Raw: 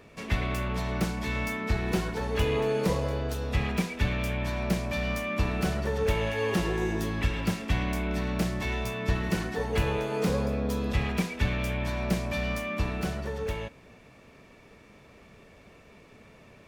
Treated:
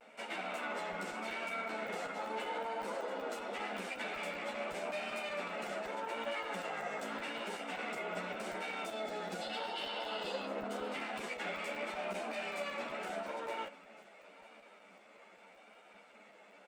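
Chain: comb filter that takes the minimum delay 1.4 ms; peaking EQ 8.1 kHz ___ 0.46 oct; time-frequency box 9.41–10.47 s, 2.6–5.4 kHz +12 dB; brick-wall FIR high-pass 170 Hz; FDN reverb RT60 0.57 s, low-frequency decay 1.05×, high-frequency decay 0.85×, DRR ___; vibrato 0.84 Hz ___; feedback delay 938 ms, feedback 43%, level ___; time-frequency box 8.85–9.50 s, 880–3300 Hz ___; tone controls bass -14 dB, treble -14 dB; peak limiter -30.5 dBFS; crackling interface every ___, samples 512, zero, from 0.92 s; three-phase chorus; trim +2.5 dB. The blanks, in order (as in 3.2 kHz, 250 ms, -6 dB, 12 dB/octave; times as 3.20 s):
+12 dB, 16 dB, 59 cents, -22.5 dB, -7 dB, 0.19 s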